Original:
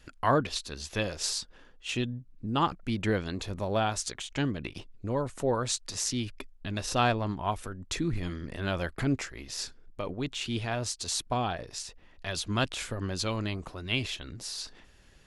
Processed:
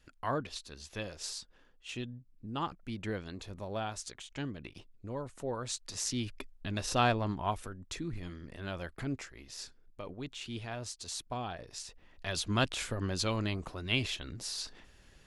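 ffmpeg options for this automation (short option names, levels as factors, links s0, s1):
-af "volume=1.88,afade=t=in:st=5.56:d=0.78:silence=0.446684,afade=t=out:st=7.42:d=0.57:silence=0.473151,afade=t=in:st=11.47:d=0.95:silence=0.421697"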